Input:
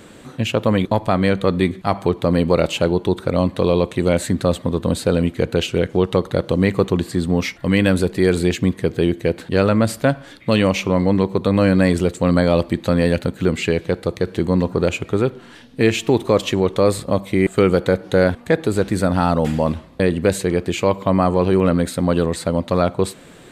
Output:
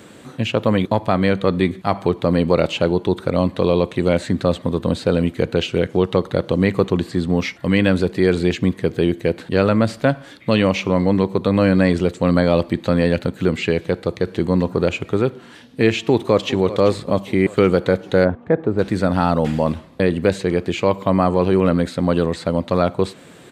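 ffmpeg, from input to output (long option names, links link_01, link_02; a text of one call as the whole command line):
ffmpeg -i in.wav -filter_complex "[0:a]asplit=2[link_01][link_02];[link_02]afade=type=in:start_time=16.1:duration=0.01,afade=type=out:start_time=16.53:duration=0.01,aecho=0:1:390|780|1170|1560|1950|2340:0.199526|0.119716|0.0718294|0.0430977|0.0258586|0.0155152[link_03];[link_01][link_03]amix=inputs=2:normalize=0,asplit=3[link_04][link_05][link_06];[link_04]afade=type=out:start_time=18.24:duration=0.02[link_07];[link_05]lowpass=1200,afade=type=in:start_time=18.24:duration=0.02,afade=type=out:start_time=18.78:duration=0.02[link_08];[link_06]afade=type=in:start_time=18.78:duration=0.02[link_09];[link_07][link_08][link_09]amix=inputs=3:normalize=0,acrossover=split=6000[link_10][link_11];[link_11]acompressor=threshold=-51dB:ratio=4:attack=1:release=60[link_12];[link_10][link_12]amix=inputs=2:normalize=0,highpass=78" out.wav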